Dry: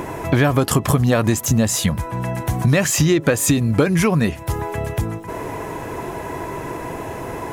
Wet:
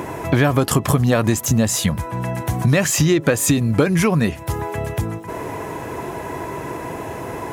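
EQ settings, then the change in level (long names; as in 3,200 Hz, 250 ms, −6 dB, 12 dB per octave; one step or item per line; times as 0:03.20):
high-pass filter 58 Hz
0.0 dB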